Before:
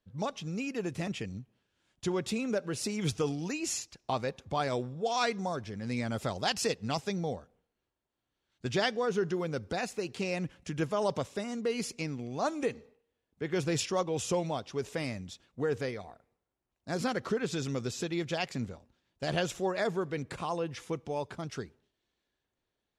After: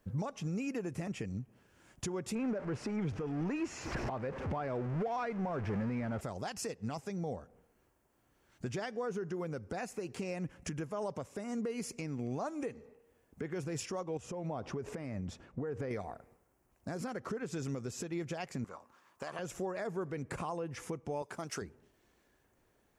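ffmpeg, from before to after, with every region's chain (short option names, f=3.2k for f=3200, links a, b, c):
-filter_complex "[0:a]asettb=1/sr,asplit=3[a][b][c];[a]atrim=end=2.354[d];[b]atrim=start=2.35:end=6.21,asetpts=PTS-STARTPTS,afade=t=in:d=0.004:c=qsin,afade=t=out:st=3.856:d=0.004:c=qsin,aeval=exprs='val(0)+0.5*0.02*sgn(val(0))':c=same,lowpass=2.7k[e];[c]atrim=start=6.206[f];[d][e]acrossfade=d=0.004:c1=hsin:c2=qsin[g];[g][f]acrossfade=d=0.004:c1=qsin:c2=hsin,asettb=1/sr,asplit=3[h][i][j];[h]atrim=end=14.174[k];[i]atrim=start=14.17:end=15.91,asetpts=PTS-STARTPTS,afade=t=in:d=0.004:c=qsin,afade=t=out:st=1.736:d=0.004:c=qsin,lowpass=f=1.8k:p=1,acompressor=threshold=-41dB:ratio=8:attack=3.2:release=140:knee=1:detection=peak[l];[j]atrim=start=15.906[m];[k][l]acrossfade=d=0.004:c1=hsin:c2=qsin[n];[n][m]acrossfade=d=0.004:c1=qsin:c2=hsin,asettb=1/sr,asplit=3[o][p][q];[o]atrim=end=18.644[r];[p]atrim=start=18.64:end=19.39,asetpts=PTS-STARTPTS,afade=t=in:d=0.004:c=qsin,afade=t=out:st=0.746:d=0.004:c=qsin,highpass=f=790:p=1,equalizer=f=1.1k:w=2.8:g=14.5[s];[q]atrim=start=19.386[t];[r][s]acrossfade=d=0.004:c1=hsin:c2=qsin[u];[u][t]acrossfade=d=0.004:c1=qsin:c2=hsin,asettb=1/sr,asplit=3[v][w][x];[v]atrim=end=21.224[y];[w]atrim=start=21.22:end=21.62,asetpts=PTS-STARTPTS,afade=t=in:d=0.004:c=qsin,afade=t=out:st=0.396:d=0.004:c=qsin,highpass=f=410:p=1,highshelf=f=4.4k:g=7[z];[x]atrim=start=21.616[aa];[y][z]acrossfade=d=0.004:c1=hsin:c2=qsin[ab];[ab][aa]acrossfade=d=0.004:c1=qsin:c2=hsin,equalizer=f=3.7k:w=1.5:g=-12,acompressor=threshold=-53dB:ratio=2,alimiter=level_in=18.5dB:limit=-24dB:level=0:latency=1:release=378,volume=-18.5dB,volume=14dB"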